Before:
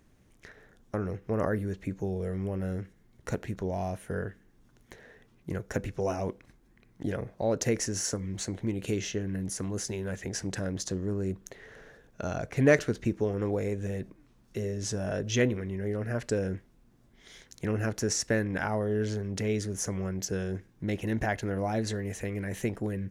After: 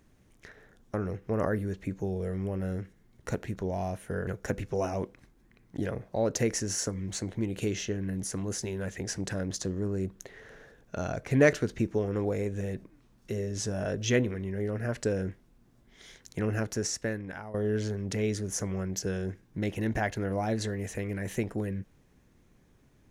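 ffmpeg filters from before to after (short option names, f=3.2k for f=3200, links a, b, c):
-filter_complex "[0:a]asplit=3[a][b][c];[a]atrim=end=4.272[d];[b]atrim=start=5.528:end=18.8,asetpts=PTS-STARTPTS,afade=t=out:st=12.282:d=0.99:silence=0.177828[e];[c]atrim=start=18.8,asetpts=PTS-STARTPTS,afade=t=in:d=0.004:c=hsin:silence=0.177828[f];[e][f]concat=n=2:v=0:a=1[g];[d][g]acrossfade=d=0.004:c1=hsin:c2=hsin"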